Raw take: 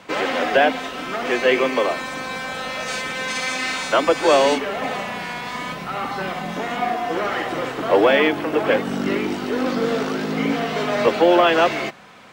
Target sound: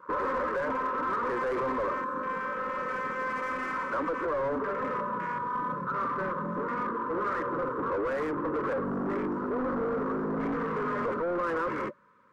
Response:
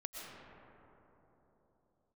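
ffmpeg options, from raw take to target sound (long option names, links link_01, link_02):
-af "asetnsamples=nb_out_samples=441:pad=0,asendcmd='1.72 equalizer g 5',equalizer=frequency=860:width=1.1:gain=14,volume=3dB,asoftclip=hard,volume=-3dB,alimiter=limit=-11dB:level=0:latency=1:release=23,afwtdn=0.0562,asuperstop=centerf=740:order=20:qfactor=2.2,asoftclip=type=tanh:threshold=-25.5dB,highshelf=frequency=2000:width_type=q:width=1.5:gain=-12.5,volume=-2.5dB"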